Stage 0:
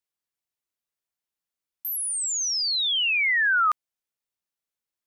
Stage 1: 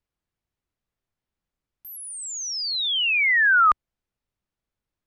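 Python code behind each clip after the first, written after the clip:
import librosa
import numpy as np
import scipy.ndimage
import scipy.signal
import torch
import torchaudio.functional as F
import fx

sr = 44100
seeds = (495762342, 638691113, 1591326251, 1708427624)

y = fx.riaa(x, sr, side='playback')
y = y * 10.0 ** (5.5 / 20.0)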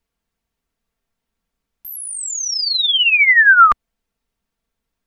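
y = x + 0.53 * np.pad(x, (int(4.4 * sr / 1000.0), 0))[:len(x)]
y = y * 10.0 ** (7.0 / 20.0)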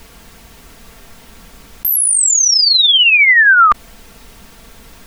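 y = fx.env_flatten(x, sr, amount_pct=70)
y = y * 10.0 ** (-1.0 / 20.0)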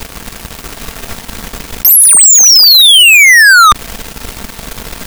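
y = fx.leveller(x, sr, passes=5)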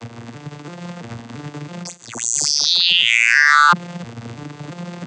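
y = fx.vocoder_arp(x, sr, chord='major triad', root=46, every_ms=335)
y = y * 10.0 ** (-10.0 / 20.0)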